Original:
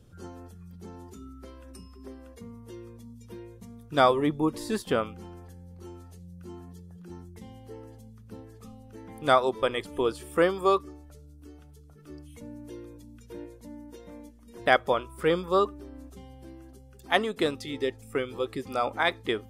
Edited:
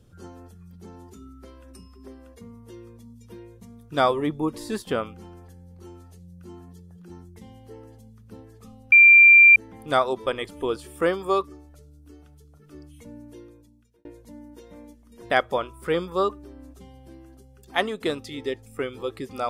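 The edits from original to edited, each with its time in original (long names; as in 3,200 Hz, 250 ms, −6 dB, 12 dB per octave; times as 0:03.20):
0:08.92: insert tone 2,370 Hz −8 dBFS 0.64 s
0:12.53–0:13.41: fade out linear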